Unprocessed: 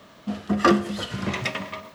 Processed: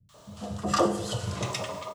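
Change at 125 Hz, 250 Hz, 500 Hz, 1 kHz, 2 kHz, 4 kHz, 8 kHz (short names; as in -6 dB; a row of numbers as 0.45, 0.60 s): -1.5, -8.0, -2.0, -4.0, -10.0, -3.5, +4.5 dB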